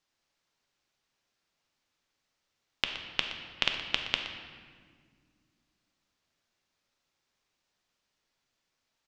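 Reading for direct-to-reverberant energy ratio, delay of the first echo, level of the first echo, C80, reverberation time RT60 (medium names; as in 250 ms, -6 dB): 3.5 dB, 120 ms, -13.0 dB, 6.5 dB, 1.8 s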